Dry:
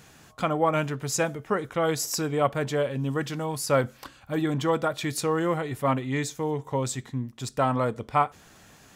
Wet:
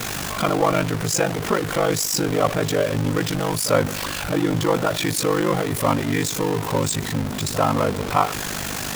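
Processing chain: jump at every zero crossing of -24 dBFS; ring modulator 25 Hz; pre-echo 45 ms -15 dB; trim +4.5 dB

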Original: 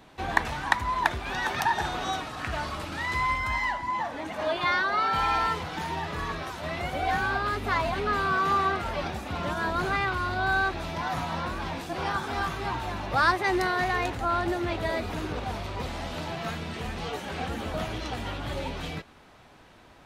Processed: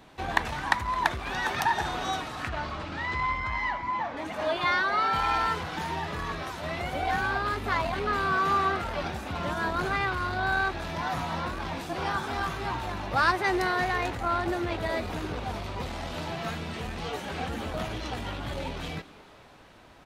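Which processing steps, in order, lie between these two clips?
2.49–4.17 s: distance through air 120 m; frequency-shifting echo 216 ms, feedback 64%, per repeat +120 Hz, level -21 dB; transformer saturation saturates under 1.3 kHz

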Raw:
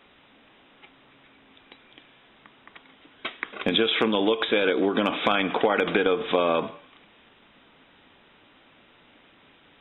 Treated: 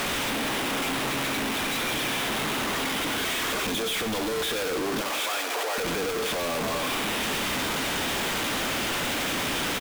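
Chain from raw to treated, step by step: one-bit comparator; 5.01–5.78 s: high-pass 390 Hz 24 dB/octave; feedback delay 96 ms, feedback 49%, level -13 dB

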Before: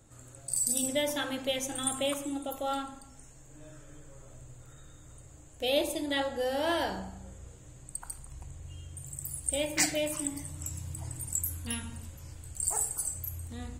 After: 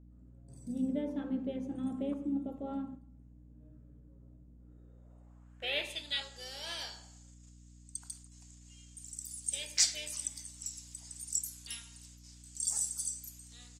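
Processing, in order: gate -45 dBFS, range -8 dB; band-pass sweep 220 Hz -> 5.4 kHz, 4.55–6.25 s; harmony voices -5 st -12 dB; hum 60 Hz, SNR 16 dB; trim +5.5 dB

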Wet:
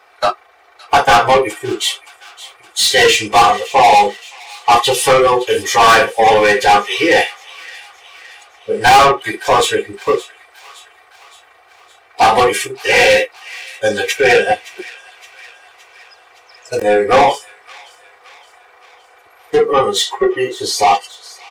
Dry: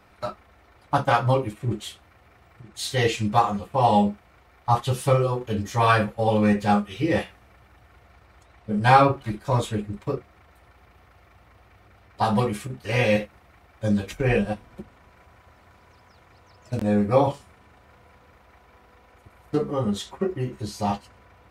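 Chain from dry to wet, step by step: resonant low shelf 350 Hz -10.5 dB, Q 1.5; comb 2.6 ms, depth 48%; overdrive pedal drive 29 dB, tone 7.2 kHz, clips at 0 dBFS; spectral noise reduction 13 dB; on a send: feedback echo behind a high-pass 567 ms, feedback 56%, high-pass 1.9 kHz, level -16.5 dB; on the sum: trim -1 dB

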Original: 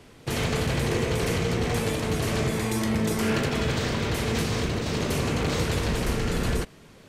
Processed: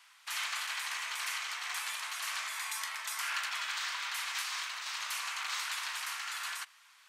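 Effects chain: steep high-pass 1 kHz 36 dB/octave; trim -3.5 dB

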